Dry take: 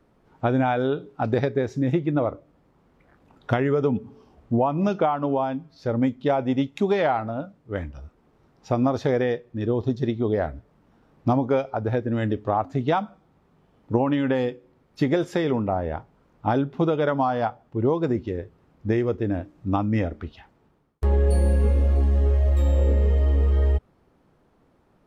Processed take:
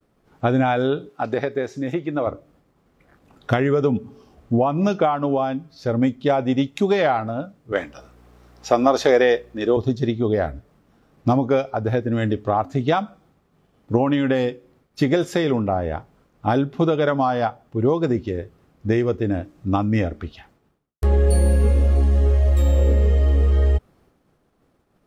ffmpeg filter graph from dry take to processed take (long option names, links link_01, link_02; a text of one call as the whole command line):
ffmpeg -i in.wav -filter_complex "[0:a]asettb=1/sr,asplit=3[link_01][link_02][link_03];[link_01]atrim=end=1.094[link_04];[link_02]atrim=start=1.09:end=2.27,asetpts=PTS-STARTPTS,afade=type=in:duration=0.004:curve=qsin,afade=type=out:start_time=1.176:duration=0.004:curve=qsin,highpass=frequency=420:poles=1,acrossover=split=2800[link_05][link_06];[link_06]acompressor=threshold=-52dB:ratio=4:attack=1:release=60[link_07];[link_05][link_07]amix=inputs=2:normalize=0[link_08];[link_03]atrim=start=2.266[link_09];[link_04][link_08]acrossfade=duration=0.004:curve1=hsin:curve2=qsin[link_10];[link_10][link_09]acrossfade=duration=0.004:curve1=qsin:curve2=hsin,asettb=1/sr,asplit=3[link_11][link_12][link_13];[link_11]atrim=end=7.724[link_14];[link_12]atrim=start=7.72:end=9.77,asetpts=PTS-STARTPTS,afade=type=in:duration=0.004:curve=qsin,afade=type=out:start_time=2.046:duration=0.004:curve=qsin,highpass=390,acontrast=64,aeval=exprs='val(0)+0.00224*(sin(2*PI*60*n/s)+sin(2*PI*2*60*n/s)/2+sin(2*PI*3*60*n/s)/3+sin(2*PI*4*60*n/s)/4+sin(2*PI*5*60*n/s)/5)':channel_layout=same[link_15];[link_13]atrim=start=9.766[link_16];[link_14][link_15]acrossfade=duration=0.004:curve1=hsin:curve2=qsin[link_17];[link_17][link_16]acrossfade=duration=0.004:curve1=qsin:curve2=hsin,bandreject=frequency=920:width=12,agate=range=-33dB:threshold=-56dB:ratio=3:detection=peak,highshelf=frequency=4600:gain=8,volume=3dB" out.wav